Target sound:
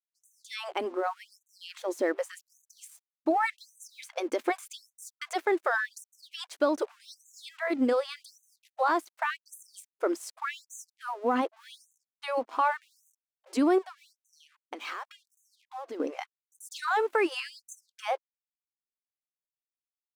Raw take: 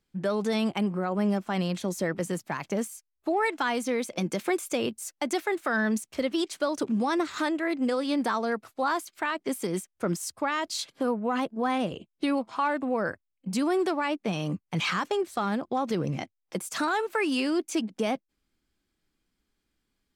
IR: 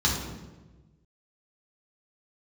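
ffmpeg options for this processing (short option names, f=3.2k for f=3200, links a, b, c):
-filter_complex "[0:a]highshelf=f=2.3k:g=-10,asettb=1/sr,asplit=3[a][b][c];[a]atrim=end=13.784[d];[b]atrim=start=13.78:end=16,asetpts=PTS-STARTPTS,afade=t=in:d=0.004:c=qsin,afade=t=out:st=2.216:d=0.004:c=qsin,acompressor=threshold=-35dB:ratio=20[e];[c]atrim=start=15.996[f];[d][e]acrossfade=d=0.004:c1=hsin:c2=qsin[g];[g][f]acrossfade=d=0.004:c1=qsin:c2=hsin,aeval=exprs='sgn(val(0))*max(abs(val(0))-0.0015,0)':c=same,afftfilt=real='re*gte(b*sr/1024,220*pow(6100/220,0.5+0.5*sin(2*PI*0.86*pts/sr)))':imag='im*gte(b*sr/1024,220*pow(6100/220,0.5+0.5*sin(2*PI*0.86*pts/sr)))':win_size=1024:overlap=0.75,volume=3.5dB"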